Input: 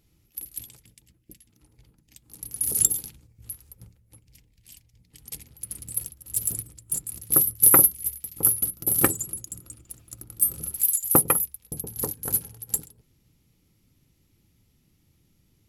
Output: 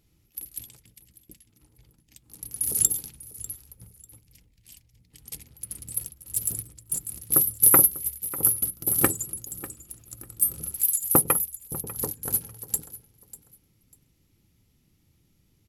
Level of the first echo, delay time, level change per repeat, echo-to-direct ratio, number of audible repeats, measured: −17.5 dB, 595 ms, −12.5 dB, −17.5 dB, 2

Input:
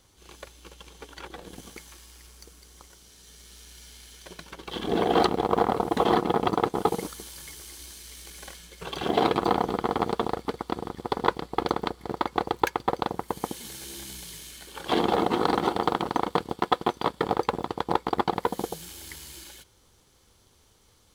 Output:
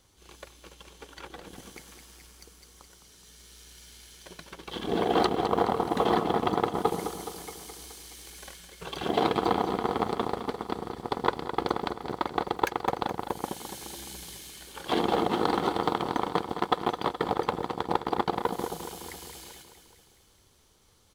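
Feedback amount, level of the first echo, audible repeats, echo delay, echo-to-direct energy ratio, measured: 60%, −10.0 dB, 6, 211 ms, −8.0 dB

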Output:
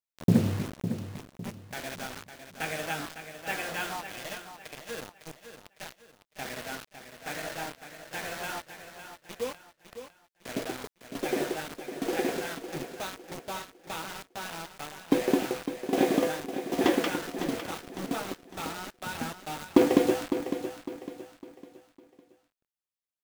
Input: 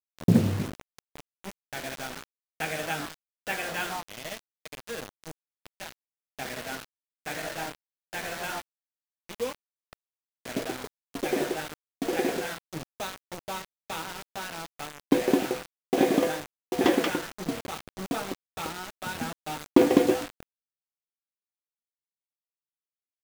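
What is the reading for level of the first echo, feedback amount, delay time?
−10.0 dB, 37%, 555 ms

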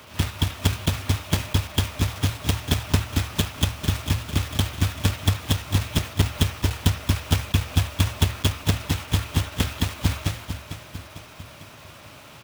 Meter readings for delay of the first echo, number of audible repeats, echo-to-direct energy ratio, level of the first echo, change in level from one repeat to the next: 449 ms, 4, −9.0 dB, −10.5 dB, −5.5 dB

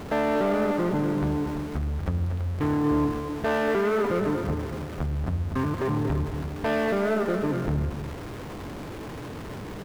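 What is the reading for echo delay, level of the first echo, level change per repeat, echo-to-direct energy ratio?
237 ms, −9.0 dB, repeats not evenly spaced, −9.0 dB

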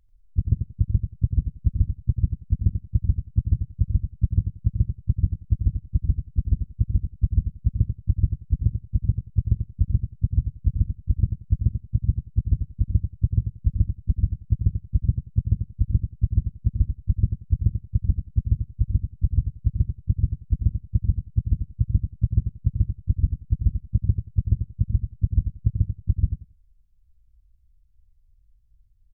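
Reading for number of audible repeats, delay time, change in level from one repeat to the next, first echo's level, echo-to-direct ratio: 2, 90 ms, −15.0 dB, −7.5 dB, −7.5 dB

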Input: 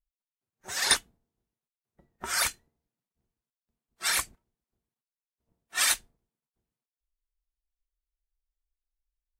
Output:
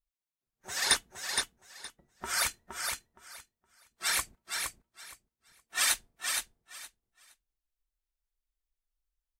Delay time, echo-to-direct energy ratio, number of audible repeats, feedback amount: 467 ms, −5.0 dB, 3, 19%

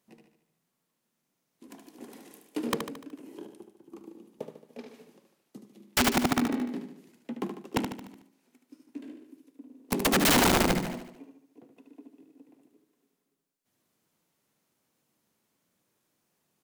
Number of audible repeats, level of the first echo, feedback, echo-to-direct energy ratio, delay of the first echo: 5, −7.5 dB, 52%, −6.0 dB, 74 ms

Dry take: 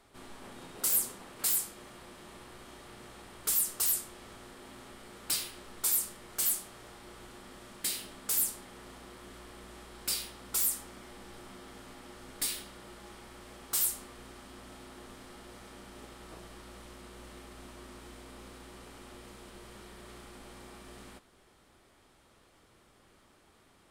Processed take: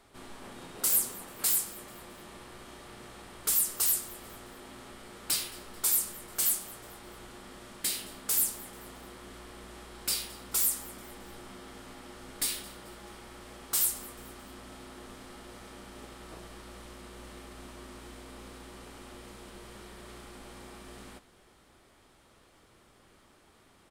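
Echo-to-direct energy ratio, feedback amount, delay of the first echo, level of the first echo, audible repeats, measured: −20.0 dB, 43%, 219 ms, −21.0 dB, 2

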